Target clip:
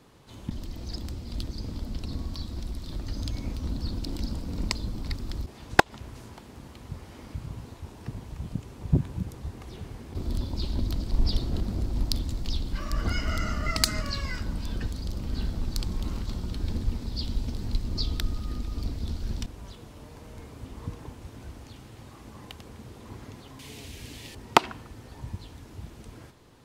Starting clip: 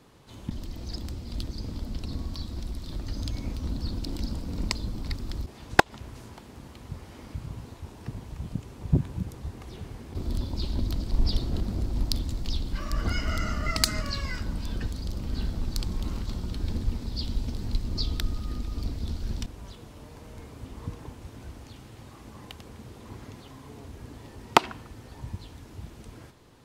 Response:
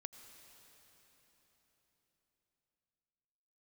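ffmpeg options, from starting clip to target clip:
-filter_complex "[0:a]asettb=1/sr,asplit=3[a][b][c];[a]atrim=end=23.594[d];[b]atrim=start=23.59:end=24.35,asetpts=PTS-STARTPTS,afade=t=in:d=0.004:c=qsin,afade=t=out:st=0.756:d=0.004:c=qsin,highshelf=f=1.8k:t=q:w=1.5:g=11[e];[c]atrim=start=24.346[f];[d][e]acrossfade=d=0.004:c1=hsin:c2=qsin[g];[g][f]acrossfade=d=0.004:c1=qsin:c2=hsin"

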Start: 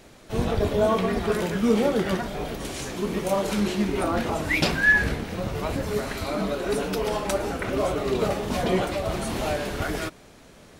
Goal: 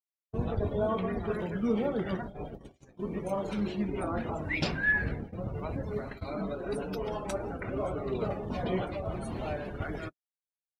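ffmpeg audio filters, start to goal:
-af "afftdn=nr=23:nf=-35,adynamicequalizer=threshold=0.00794:dfrequency=110:dqfactor=1.1:tfrequency=110:tqfactor=1.1:attack=5:release=100:ratio=0.375:range=2.5:mode=boostabove:tftype=bell,agate=range=-55dB:threshold=-30dB:ratio=16:detection=peak,volume=-8.5dB"

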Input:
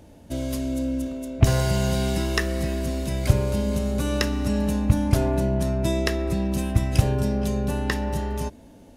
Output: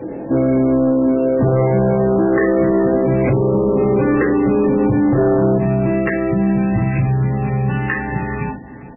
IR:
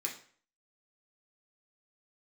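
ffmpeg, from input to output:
-filter_complex "[1:a]atrim=start_sample=2205,atrim=end_sample=3969[a];[0:a][a]afir=irnorm=-1:irlink=0,acompressor=threshold=-30dB:ratio=2.5,aeval=exprs='0.237*sin(PI/2*2*val(0)/0.237)':c=same,lowpass=1.7k,asetnsamples=n=441:p=0,asendcmd='5.58 equalizer g -6;6.88 equalizer g -12',equalizer=f=430:t=o:w=1.5:g=8.5,aecho=1:1:419|838:0.133|0.0267,asoftclip=type=tanh:threshold=-13dB,alimiter=level_in=17dB:limit=-1dB:release=50:level=0:latency=1,volume=-8dB" -ar 12000 -c:a libmp3lame -b:a 8k

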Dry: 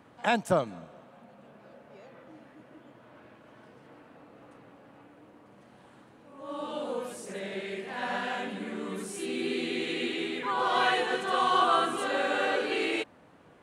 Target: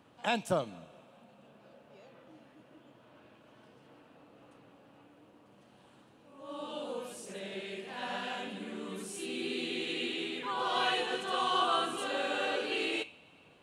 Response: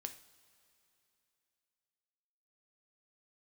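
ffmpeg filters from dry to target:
-filter_complex "[0:a]asplit=2[a][b];[b]highshelf=f=2k:t=q:w=3:g=9[c];[1:a]atrim=start_sample=2205[d];[c][d]afir=irnorm=-1:irlink=0,volume=-8.5dB[e];[a][e]amix=inputs=2:normalize=0,volume=-7dB"

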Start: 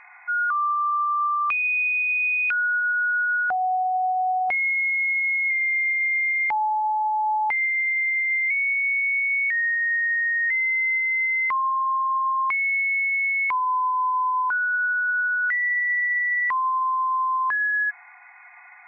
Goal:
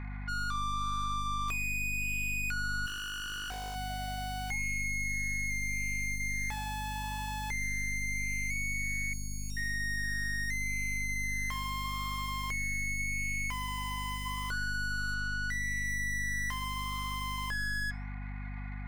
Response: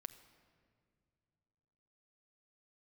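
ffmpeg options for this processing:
-filter_complex "[0:a]asettb=1/sr,asplit=3[a][b][c];[a]atrim=end=15.144[d];[b]atrim=start=15.14:end=15.85,asetpts=PTS-STARTPTS,afade=t=in:d=0.004:c=qsin,afade=t=out:st=0.706:d=0.004:c=qsin,equalizer=f=1.1k:t=o:w=1.7:g=-4[e];[c]atrim=start=15.846[f];[d][e]acrossfade=d=0.004:c1=hsin:c2=qsin[g];[g][f]acrossfade=d=0.004:c1=qsin:c2=hsin,aeval=exprs='(tanh(39.8*val(0)+0.35)-tanh(0.35))/39.8':c=same,acrossover=split=580[h][i];[h]aeval=exprs='(mod(112*val(0)+1,2)-1)/112':c=same[j];[i]flanger=delay=2.1:depth=6.3:regen=-88:speed=0.81:shape=sinusoidal[k];[j][k]amix=inputs=2:normalize=0,aeval=exprs='val(0)+0.01*(sin(2*PI*50*n/s)+sin(2*PI*2*50*n/s)/2+sin(2*PI*3*50*n/s)/3+sin(2*PI*4*50*n/s)/4+sin(2*PI*5*50*n/s)/5)':c=same,asettb=1/sr,asplit=3[l][m][n];[l]atrim=end=2.864[o];[m]atrim=start=2.86:end=3.76,asetpts=PTS-STARTPTS,afade=t=in:d=0.004:c=qsin,afade=t=out:st=0.896:d=0.004:c=qsin,aeval=exprs='0.0168*(abs(mod(val(0)/0.0168+3,4)-2)-1)':c=same[p];[n]atrim=start=3.756[q];[o][p]acrossfade=d=0.004:c1=hsin:c2=qsin[r];[r][q]acrossfade=d=0.004:c1=qsin:c2=hsin,asettb=1/sr,asplit=3[s][t][u];[s]atrim=end=9.134[v];[t]atrim=start=9.13:end=9.57,asetpts=PTS-STARTPTS,afade=t=in:d=0.004:c=qsin,afade=t=out:st=0.436:d=0.004:c=qsin,asuperstop=centerf=1900:order=4:qfactor=0.8[w];[u]atrim=start=9.566[x];[v][w]acrossfade=d=0.004:c1=hsin:c2=qsin[y];[y][x]acrossfade=d=0.004:c1=qsin:c2=hsin,asplit=2[z][aa];[1:a]atrim=start_sample=2205,afade=t=out:st=0.21:d=0.01,atrim=end_sample=9702[ab];[aa][ab]afir=irnorm=-1:irlink=0,volume=-7.5dB[ac];[z][ac]amix=inputs=2:normalize=0"

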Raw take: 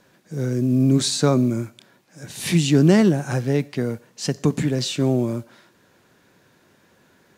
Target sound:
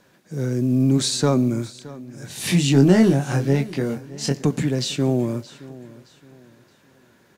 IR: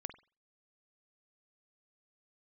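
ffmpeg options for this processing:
-filter_complex "[0:a]asoftclip=type=tanh:threshold=-6dB,asettb=1/sr,asplit=3[a][b][c];[a]atrim=end=2.294[d];[b]atrim=start=2.29:end=4.45,asetpts=PTS-STARTPTS,afade=t=in:d=0.004:c=qsin,afade=t=out:st=2.156:d=0.004:c=qsin,asplit=2[e][f];[f]adelay=22,volume=-4.5dB[g];[e][g]amix=inputs=2:normalize=0,atrim=end_sample=95256[h];[c]atrim=start=4.446[i];[d][h]acrossfade=d=0.004:c1=hsin:c2=qsin[j];[j][i]acrossfade=d=0.004:c1=qsin:c2=hsin,aecho=1:1:620|1240|1860:0.112|0.037|0.0122"

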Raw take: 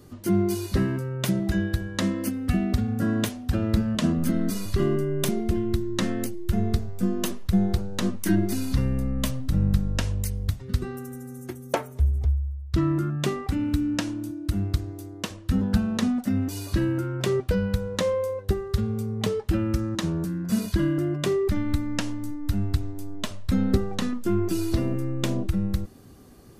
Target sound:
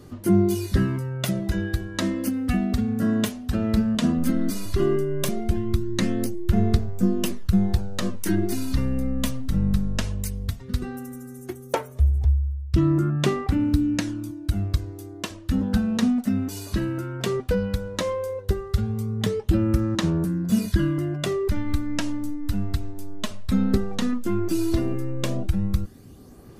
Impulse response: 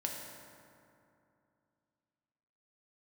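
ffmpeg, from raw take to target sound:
-af "aphaser=in_gain=1:out_gain=1:delay=4.7:decay=0.38:speed=0.15:type=sinusoidal"

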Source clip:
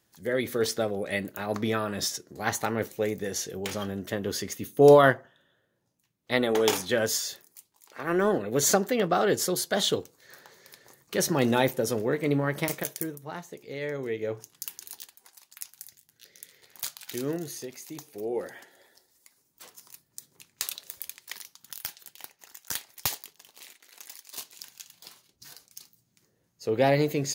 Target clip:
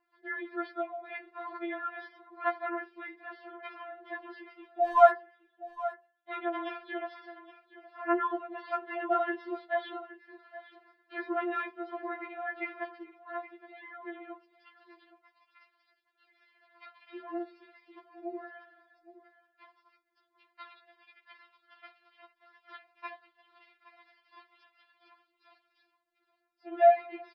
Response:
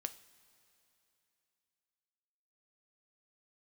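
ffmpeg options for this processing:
-filter_complex "[0:a]aresample=11025,aresample=44100,acrossover=split=3400[a][b];[b]acompressor=threshold=-56dB:ratio=6[c];[a][c]amix=inputs=2:normalize=0,acrossover=split=460 2200:gain=0.0794 1 0.0631[d][e][f];[d][e][f]amix=inputs=3:normalize=0,asplit=2[g][h];[h]volume=16.5dB,asoftclip=hard,volume=-16.5dB,volume=-11.5dB[i];[g][i]amix=inputs=2:normalize=0,aecho=1:1:819:0.158,afftfilt=real='re*4*eq(mod(b,16),0)':imag='im*4*eq(mod(b,16),0)':win_size=2048:overlap=0.75"

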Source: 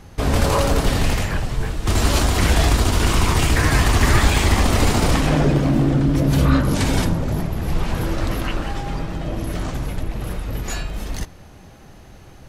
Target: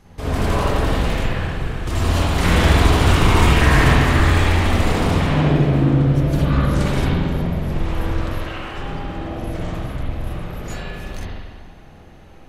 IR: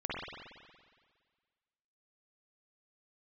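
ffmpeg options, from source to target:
-filter_complex "[0:a]asettb=1/sr,asplit=3[a][b][c];[a]atrim=end=2.384[d];[b]atrim=start=2.38:end=3.93,asetpts=PTS-STARTPTS,afade=t=in:d=0.004:c=qsin,afade=t=out:st=1.546:d=0.004:c=qsin,acontrast=36[e];[c]atrim=start=3.926[f];[d][e]acrossfade=d=0.004:c1=hsin:c2=qsin[g];[g][f]acrossfade=d=0.004:c1=qsin:c2=hsin,asettb=1/sr,asplit=3[h][i][j];[h]atrim=end=8.264[k];[i]atrim=start=8.26:end=8.73,asetpts=PTS-STARTPTS,afade=t=in:d=0.004:c=qsin,afade=t=out:st=0.466:d=0.004:c=qsin,highpass=f=580:p=1[l];[j]atrim=start=8.726[m];[k][l]acrossfade=d=0.004:c1=hsin:c2=qsin[n];[n][m]acrossfade=d=0.004:c1=qsin:c2=hsin[o];[1:a]atrim=start_sample=2205[p];[o][p]afir=irnorm=-1:irlink=0,volume=-5.5dB"

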